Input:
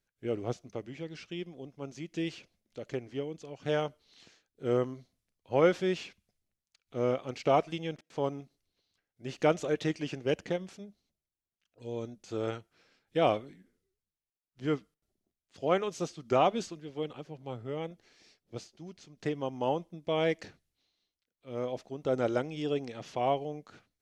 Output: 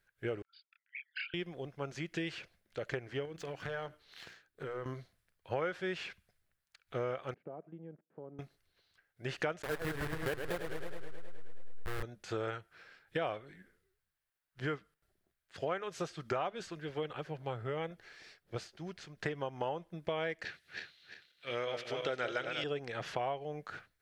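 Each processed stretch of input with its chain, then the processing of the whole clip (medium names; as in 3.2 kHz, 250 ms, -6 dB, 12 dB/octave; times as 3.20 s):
0.42–1.34 s: resonances exaggerated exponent 3 + brick-wall FIR band-pass 1.3–5 kHz + doubling 29 ms -2 dB
3.25–4.86 s: waveshaping leveller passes 1 + compression 12:1, threshold -40 dBFS + hum notches 60/120/180/240/300/360 Hz
7.34–8.39 s: compression 2.5:1, threshold -33 dBFS + ladder band-pass 260 Hz, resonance 30%
9.62–12.03 s: send-on-delta sampling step -29 dBFS + modulated delay 106 ms, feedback 74%, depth 149 cents, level -8.5 dB
20.45–22.64 s: backward echo that repeats 174 ms, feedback 59%, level -6 dB + frequency weighting D
whole clip: fifteen-band graphic EQ 250 Hz -10 dB, 1.6 kHz +10 dB, 6.3 kHz -6 dB; compression 5:1, threshold -39 dBFS; trim +5 dB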